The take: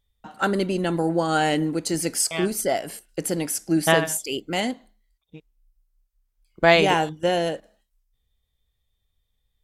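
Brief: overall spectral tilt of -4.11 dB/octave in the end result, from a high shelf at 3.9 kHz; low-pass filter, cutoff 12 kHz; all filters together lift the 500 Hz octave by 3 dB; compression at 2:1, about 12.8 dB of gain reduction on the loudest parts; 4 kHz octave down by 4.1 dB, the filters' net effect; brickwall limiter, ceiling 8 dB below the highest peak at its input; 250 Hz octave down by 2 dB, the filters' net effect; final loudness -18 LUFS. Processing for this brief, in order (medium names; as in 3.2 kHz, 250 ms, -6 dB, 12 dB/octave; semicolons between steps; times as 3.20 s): low-pass 12 kHz; peaking EQ 250 Hz -6 dB; peaking EQ 500 Hz +5.5 dB; treble shelf 3.9 kHz -3.5 dB; peaking EQ 4 kHz -4 dB; compression 2:1, threshold -34 dBFS; trim +15.5 dB; peak limiter -7 dBFS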